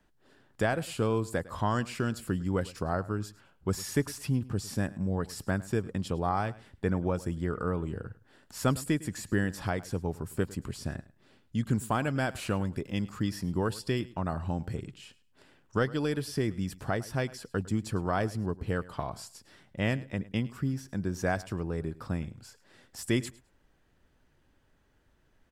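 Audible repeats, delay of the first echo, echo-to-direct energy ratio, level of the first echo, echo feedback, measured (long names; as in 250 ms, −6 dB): 2, 105 ms, −19.5 dB, −19.5 dB, 18%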